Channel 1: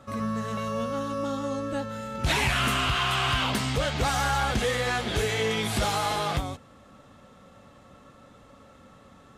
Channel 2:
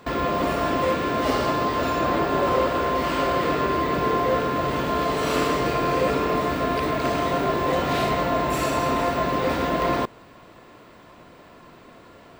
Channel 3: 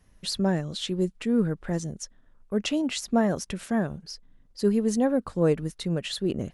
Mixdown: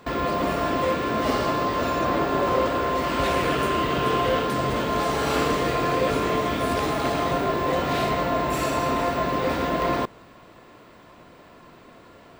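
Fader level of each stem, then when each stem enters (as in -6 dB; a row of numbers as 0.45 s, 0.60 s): -7.0 dB, -1.0 dB, -17.0 dB; 0.95 s, 0.00 s, 0.00 s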